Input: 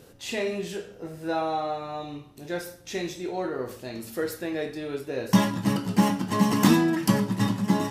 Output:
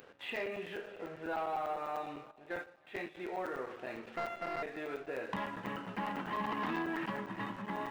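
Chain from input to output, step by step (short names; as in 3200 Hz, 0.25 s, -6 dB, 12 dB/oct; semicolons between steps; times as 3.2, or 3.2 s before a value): 4.17–4.63 sample sorter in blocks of 64 samples; 6.08–7.06 transient shaper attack 0 dB, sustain +12 dB; compressor 2:1, threshold -38 dBFS, peak gain reduction 13.5 dB; Gaussian blur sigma 4.6 samples; differentiator; sample leveller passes 2; split-band echo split 940 Hz, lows 0.471 s, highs 0.327 s, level -16 dB; 2.31–3.15 gate -55 dBFS, range -10 dB; crackling interface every 0.10 s, samples 256, zero, from 0.36; gain +14 dB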